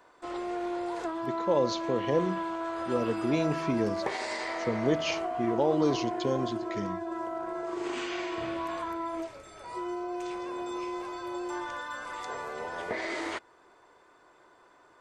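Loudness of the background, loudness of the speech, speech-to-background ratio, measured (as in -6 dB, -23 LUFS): -34.5 LUFS, -30.5 LUFS, 4.0 dB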